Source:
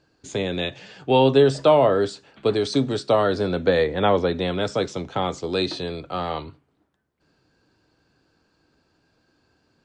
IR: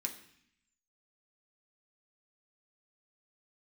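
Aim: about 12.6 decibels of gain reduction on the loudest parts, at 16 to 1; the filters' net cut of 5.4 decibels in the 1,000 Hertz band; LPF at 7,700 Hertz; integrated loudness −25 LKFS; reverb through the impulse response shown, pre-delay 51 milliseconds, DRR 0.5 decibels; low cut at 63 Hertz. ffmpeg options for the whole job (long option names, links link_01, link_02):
-filter_complex "[0:a]highpass=63,lowpass=7700,equalizer=frequency=1000:width_type=o:gain=-7.5,acompressor=threshold=-25dB:ratio=16,asplit=2[link_01][link_02];[1:a]atrim=start_sample=2205,adelay=51[link_03];[link_02][link_03]afir=irnorm=-1:irlink=0,volume=0dB[link_04];[link_01][link_04]amix=inputs=2:normalize=0,volume=3.5dB"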